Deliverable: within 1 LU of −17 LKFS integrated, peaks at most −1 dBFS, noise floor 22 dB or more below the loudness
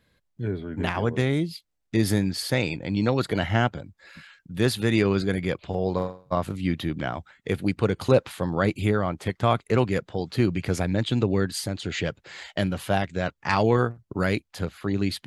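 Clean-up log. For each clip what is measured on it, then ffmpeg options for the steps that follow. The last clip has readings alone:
integrated loudness −26.0 LKFS; sample peak −6.0 dBFS; target loudness −17.0 LKFS
→ -af "volume=9dB,alimiter=limit=-1dB:level=0:latency=1"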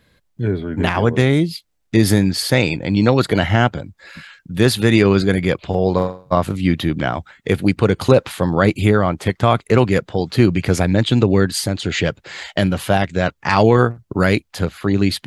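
integrated loudness −17.5 LKFS; sample peak −1.0 dBFS; background noise floor −65 dBFS

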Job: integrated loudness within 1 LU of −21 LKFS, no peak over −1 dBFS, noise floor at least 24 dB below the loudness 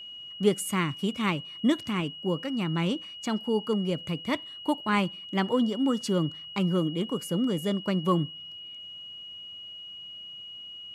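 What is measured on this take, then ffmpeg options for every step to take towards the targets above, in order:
interfering tone 2,900 Hz; level of the tone −40 dBFS; integrated loudness −28.5 LKFS; sample peak −10.5 dBFS; target loudness −21.0 LKFS
→ -af "bandreject=frequency=2900:width=30"
-af "volume=7.5dB"

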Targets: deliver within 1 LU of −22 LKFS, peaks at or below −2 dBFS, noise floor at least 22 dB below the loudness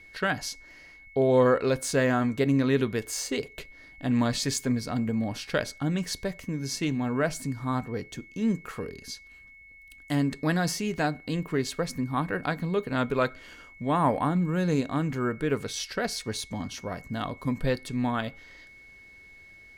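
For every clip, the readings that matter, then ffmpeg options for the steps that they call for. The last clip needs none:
interfering tone 2,200 Hz; level of the tone −49 dBFS; integrated loudness −28.5 LKFS; sample peak −10.5 dBFS; target loudness −22.0 LKFS
→ -af "bandreject=frequency=2200:width=30"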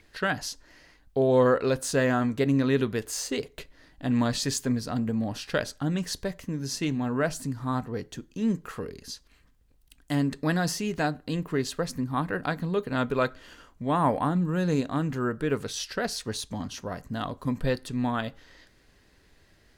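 interfering tone none found; integrated loudness −28.5 LKFS; sample peak −10.5 dBFS; target loudness −22.0 LKFS
→ -af "volume=6.5dB"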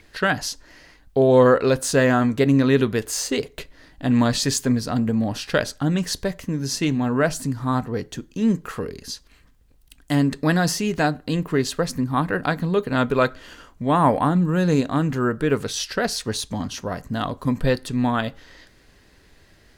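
integrated loudness −22.0 LKFS; sample peak −4.0 dBFS; background noise floor −55 dBFS

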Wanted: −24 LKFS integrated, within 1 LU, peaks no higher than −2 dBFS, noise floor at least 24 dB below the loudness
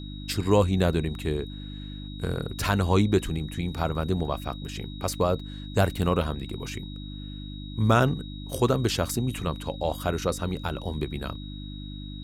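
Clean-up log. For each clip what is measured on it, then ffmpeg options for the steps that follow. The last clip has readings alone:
mains hum 50 Hz; hum harmonics up to 300 Hz; level of the hum −36 dBFS; interfering tone 3,800 Hz; level of the tone −45 dBFS; integrated loudness −27.5 LKFS; sample peak −7.5 dBFS; target loudness −24.0 LKFS
→ -af "bandreject=frequency=50:width_type=h:width=4,bandreject=frequency=100:width_type=h:width=4,bandreject=frequency=150:width_type=h:width=4,bandreject=frequency=200:width_type=h:width=4,bandreject=frequency=250:width_type=h:width=4,bandreject=frequency=300:width_type=h:width=4"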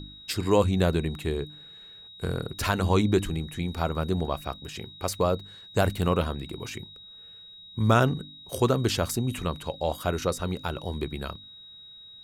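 mains hum none found; interfering tone 3,800 Hz; level of the tone −45 dBFS
→ -af "bandreject=frequency=3800:width=30"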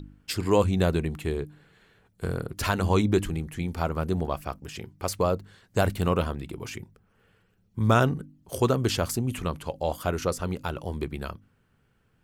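interfering tone none found; integrated loudness −27.5 LKFS; sample peak −7.5 dBFS; target loudness −24.0 LKFS
→ -af "volume=3.5dB"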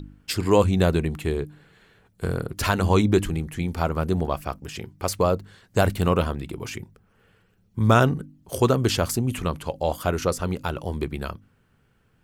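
integrated loudness −24.0 LKFS; sample peak −4.0 dBFS; background noise floor −64 dBFS

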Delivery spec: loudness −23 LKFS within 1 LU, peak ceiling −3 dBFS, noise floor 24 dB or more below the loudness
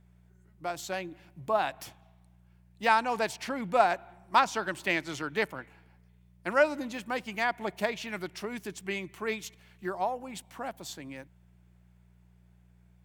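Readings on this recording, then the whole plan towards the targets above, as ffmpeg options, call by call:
mains hum 60 Hz; hum harmonics up to 180 Hz; level of the hum −56 dBFS; integrated loudness −31.0 LKFS; sample peak −8.5 dBFS; target loudness −23.0 LKFS
→ -af "bandreject=frequency=60:width_type=h:width=4,bandreject=frequency=120:width_type=h:width=4,bandreject=frequency=180:width_type=h:width=4"
-af "volume=8dB,alimiter=limit=-3dB:level=0:latency=1"

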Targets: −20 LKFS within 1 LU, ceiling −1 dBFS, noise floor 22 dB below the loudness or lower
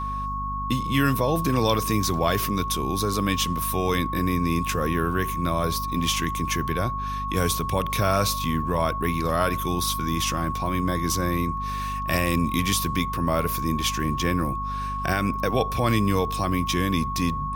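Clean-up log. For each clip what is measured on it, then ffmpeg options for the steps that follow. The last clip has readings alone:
mains hum 50 Hz; hum harmonics up to 250 Hz; level of the hum −31 dBFS; interfering tone 1,100 Hz; level of the tone −28 dBFS; integrated loudness −24.5 LKFS; sample peak −7.0 dBFS; target loudness −20.0 LKFS
→ -af "bandreject=frequency=50:width_type=h:width=4,bandreject=frequency=100:width_type=h:width=4,bandreject=frequency=150:width_type=h:width=4,bandreject=frequency=200:width_type=h:width=4,bandreject=frequency=250:width_type=h:width=4"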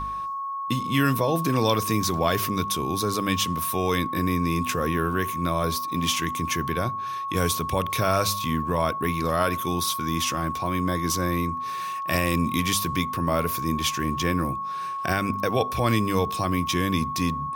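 mains hum none found; interfering tone 1,100 Hz; level of the tone −28 dBFS
→ -af "bandreject=frequency=1100:width=30"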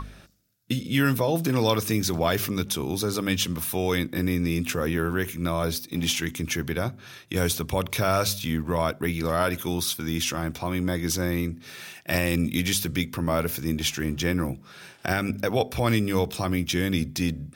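interfering tone none found; integrated loudness −26.0 LKFS; sample peak −8.0 dBFS; target loudness −20.0 LKFS
→ -af "volume=6dB"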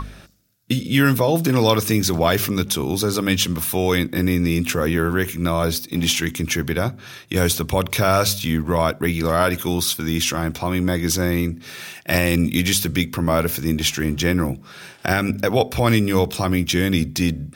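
integrated loudness −20.0 LKFS; sample peak −2.0 dBFS; background noise floor −44 dBFS

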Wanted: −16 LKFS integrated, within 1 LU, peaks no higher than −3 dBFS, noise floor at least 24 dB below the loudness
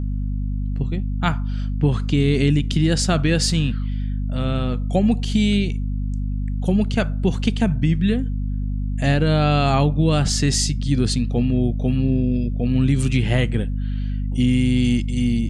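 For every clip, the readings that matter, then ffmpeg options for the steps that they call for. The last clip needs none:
mains hum 50 Hz; hum harmonics up to 250 Hz; level of the hum −21 dBFS; integrated loudness −21.0 LKFS; sample peak −4.0 dBFS; target loudness −16.0 LKFS
→ -af "bandreject=frequency=50:width_type=h:width=6,bandreject=frequency=100:width_type=h:width=6,bandreject=frequency=150:width_type=h:width=6,bandreject=frequency=200:width_type=h:width=6,bandreject=frequency=250:width_type=h:width=6"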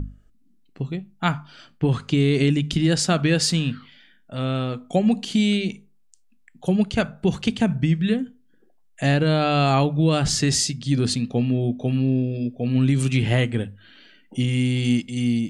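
mains hum none found; integrated loudness −22.0 LKFS; sample peak −7.0 dBFS; target loudness −16.0 LKFS
→ -af "volume=6dB,alimiter=limit=-3dB:level=0:latency=1"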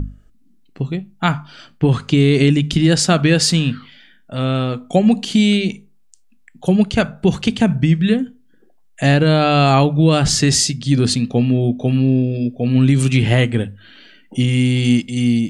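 integrated loudness −16.0 LKFS; sample peak −3.0 dBFS; background noise floor −51 dBFS

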